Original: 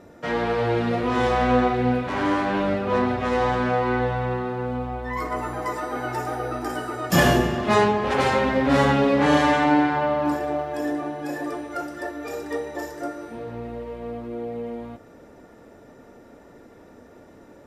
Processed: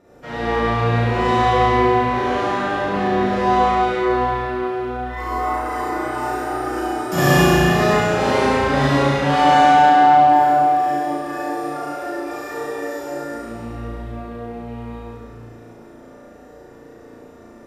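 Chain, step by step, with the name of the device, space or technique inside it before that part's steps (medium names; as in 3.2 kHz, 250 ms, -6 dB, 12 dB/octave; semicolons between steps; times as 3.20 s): tunnel (flutter echo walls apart 6 m, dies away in 1 s; reverberation RT60 2.6 s, pre-delay 42 ms, DRR -7.5 dB); trim -7.5 dB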